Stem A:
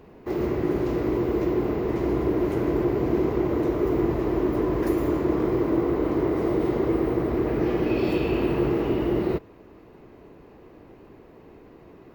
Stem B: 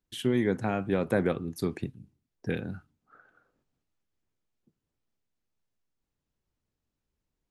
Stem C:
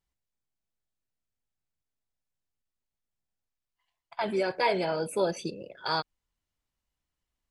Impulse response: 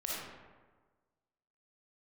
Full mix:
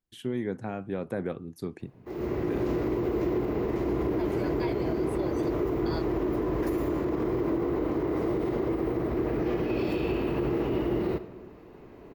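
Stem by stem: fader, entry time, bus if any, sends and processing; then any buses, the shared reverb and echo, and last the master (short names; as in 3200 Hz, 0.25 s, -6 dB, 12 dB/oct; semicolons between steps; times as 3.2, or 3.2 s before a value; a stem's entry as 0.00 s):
-12.5 dB, 1.80 s, send -16.5 dB, AGC gain up to 11.5 dB
-3.5 dB, 0.00 s, no send, tilt shelf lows +6 dB, about 810 Hz; low shelf 440 Hz -8.5 dB
-10.0 dB, 0.00 s, no send, dry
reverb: on, RT60 1.4 s, pre-delay 15 ms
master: limiter -20 dBFS, peak gain reduction 6 dB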